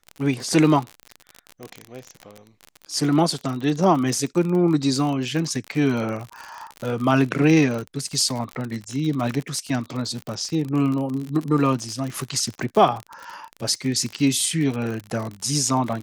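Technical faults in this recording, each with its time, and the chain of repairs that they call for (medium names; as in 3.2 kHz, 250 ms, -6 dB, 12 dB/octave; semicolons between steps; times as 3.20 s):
crackle 50 per s -26 dBFS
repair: de-click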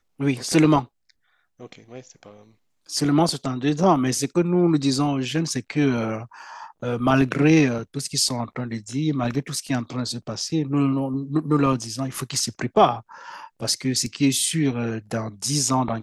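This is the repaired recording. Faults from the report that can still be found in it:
nothing left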